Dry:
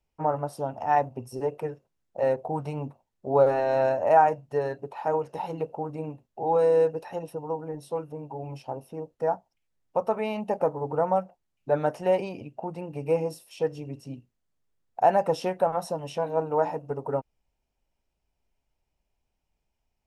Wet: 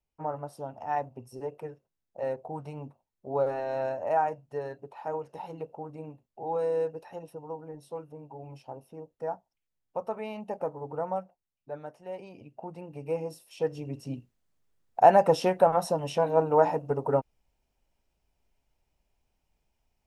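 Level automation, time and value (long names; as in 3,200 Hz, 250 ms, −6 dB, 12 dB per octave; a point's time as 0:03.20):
0:11.17 −7.5 dB
0:12.02 −18 dB
0:12.55 −6.5 dB
0:13.20 −6.5 dB
0:14.14 +3 dB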